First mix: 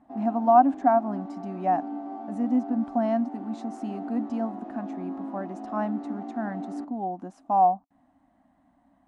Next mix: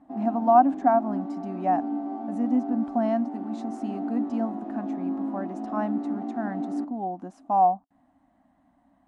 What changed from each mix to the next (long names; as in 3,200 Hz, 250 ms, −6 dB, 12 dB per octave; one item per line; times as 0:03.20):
background: remove high-pass filter 450 Hz 6 dB per octave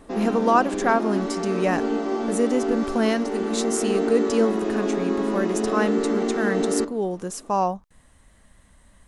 speech −7.0 dB
master: remove pair of resonant band-passes 450 Hz, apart 1.4 octaves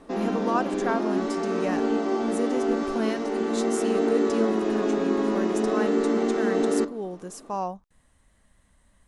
speech −7.5 dB